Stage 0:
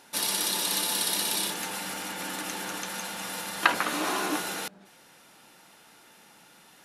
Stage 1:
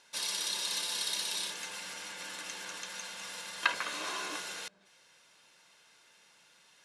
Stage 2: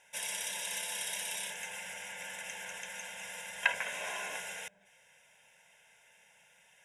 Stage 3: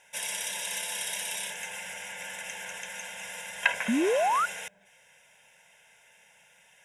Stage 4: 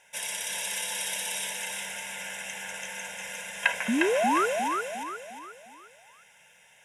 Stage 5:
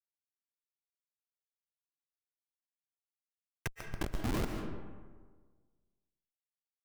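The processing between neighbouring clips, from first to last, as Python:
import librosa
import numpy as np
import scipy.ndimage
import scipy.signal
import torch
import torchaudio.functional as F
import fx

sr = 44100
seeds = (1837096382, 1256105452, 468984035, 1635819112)

y1 = scipy.signal.sosfilt(scipy.signal.bessel(4, 6800.0, 'lowpass', norm='mag', fs=sr, output='sos'), x)
y1 = fx.tilt_shelf(y1, sr, db=-6.0, hz=1400.0)
y1 = y1 + 0.41 * np.pad(y1, (int(1.9 * sr / 1000.0), 0))[:len(y1)]
y1 = F.gain(torch.from_numpy(y1), -8.5).numpy()
y2 = fx.fixed_phaser(y1, sr, hz=1200.0, stages=6)
y2 = F.gain(torch.from_numpy(y2), 3.0).numpy()
y3 = fx.spec_paint(y2, sr, seeds[0], shape='rise', start_s=3.88, length_s=0.58, low_hz=210.0, high_hz=1500.0, level_db=-29.0)
y3 = F.gain(torch.from_numpy(y3), 4.0).numpy()
y4 = fx.echo_feedback(y3, sr, ms=355, feedback_pct=42, wet_db=-4.0)
y5 = fx.comb_fb(y4, sr, f0_hz=170.0, decay_s=1.8, harmonics='all', damping=0.0, mix_pct=60)
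y5 = fx.schmitt(y5, sr, flips_db=-25.5)
y5 = fx.rev_freeverb(y5, sr, rt60_s=1.5, hf_ratio=0.5, predelay_ms=100, drr_db=4.5)
y5 = F.gain(torch.from_numpy(y5), 7.0).numpy()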